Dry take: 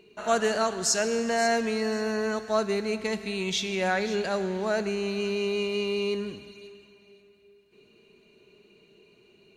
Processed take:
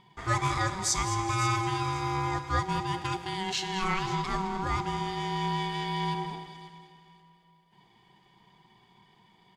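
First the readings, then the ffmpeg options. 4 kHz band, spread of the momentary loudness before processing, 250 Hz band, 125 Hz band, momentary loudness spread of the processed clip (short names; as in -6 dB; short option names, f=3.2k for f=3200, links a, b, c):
-2.0 dB, 6 LU, -4.5 dB, +9.0 dB, 6 LU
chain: -af "aecho=1:1:213|426|639|852:0.251|0.111|0.0486|0.0214,aeval=exprs='val(0)*sin(2*PI*570*n/s)':c=same"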